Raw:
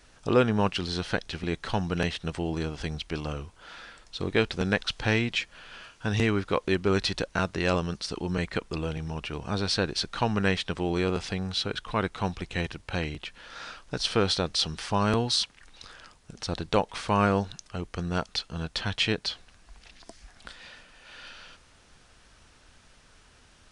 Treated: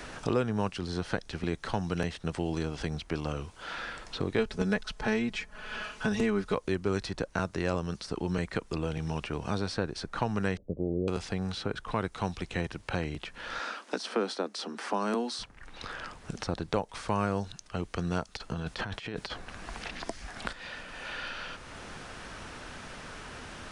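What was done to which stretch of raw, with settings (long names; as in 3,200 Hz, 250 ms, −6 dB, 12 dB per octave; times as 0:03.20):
0:04.38–0:06.55: comb filter 4.7 ms, depth 89%
0:10.57–0:11.08: elliptic low-pass filter 580 Hz, stop band 60 dB
0:13.59–0:15.39: Butterworth high-pass 210 Hz 72 dB per octave
0:18.37–0:20.53: compressor whose output falls as the input rises −37 dBFS
whole clip: dynamic equaliser 3,200 Hz, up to −8 dB, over −44 dBFS, Q 0.97; multiband upward and downward compressor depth 70%; level −3 dB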